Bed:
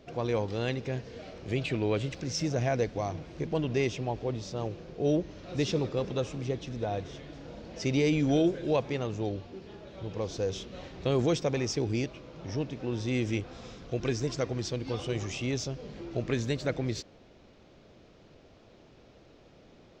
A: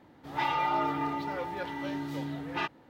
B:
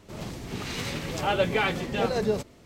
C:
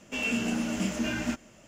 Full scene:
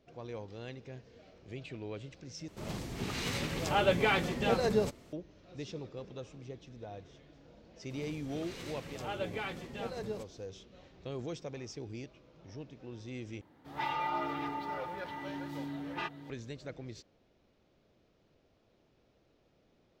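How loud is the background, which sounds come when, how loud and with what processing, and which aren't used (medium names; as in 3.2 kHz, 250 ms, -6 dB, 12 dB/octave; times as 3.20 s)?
bed -13.5 dB
2.48 s: replace with B -3 dB
7.81 s: add B -13.5 dB
13.41 s: replace with A -5.5 dB + chunks repeated in reverse 363 ms, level -8 dB
not used: C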